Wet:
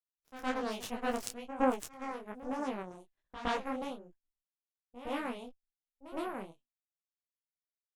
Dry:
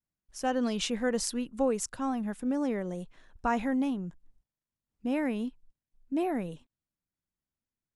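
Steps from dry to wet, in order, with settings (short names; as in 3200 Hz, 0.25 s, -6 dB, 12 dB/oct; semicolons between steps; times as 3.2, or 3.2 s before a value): added harmonics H 3 -13 dB, 7 -27 dB, 8 -30 dB, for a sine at -12.5 dBFS; pre-echo 0.113 s -13 dB; detuned doubles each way 41 cents; gain +7 dB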